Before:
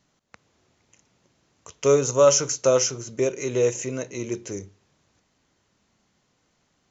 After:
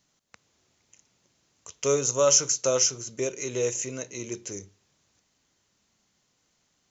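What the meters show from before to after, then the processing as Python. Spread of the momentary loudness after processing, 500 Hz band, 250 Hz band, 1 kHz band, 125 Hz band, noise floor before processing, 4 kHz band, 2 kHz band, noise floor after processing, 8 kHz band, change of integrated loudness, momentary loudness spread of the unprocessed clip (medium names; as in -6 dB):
16 LU, -6.0 dB, -6.5 dB, -5.0 dB, -6.5 dB, -70 dBFS, +1.0 dB, -3.0 dB, -72 dBFS, no reading, -3.0 dB, 14 LU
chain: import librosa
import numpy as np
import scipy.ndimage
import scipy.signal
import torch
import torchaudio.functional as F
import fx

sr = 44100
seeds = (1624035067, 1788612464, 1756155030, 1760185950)

y = fx.high_shelf(x, sr, hz=3100.0, db=10.5)
y = y * 10.0 ** (-6.5 / 20.0)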